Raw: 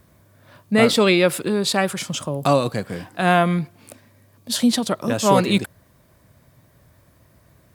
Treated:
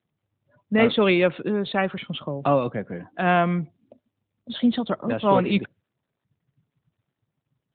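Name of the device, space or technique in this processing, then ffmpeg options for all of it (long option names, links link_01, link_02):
mobile call with aggressive noise cancelling: -af "highpass=120,afftdn=noise_reduction=33:noise_floor=-39,volume=-2.5dB" -ar 8000 -c:a libopencore_amrnb -b:a 12200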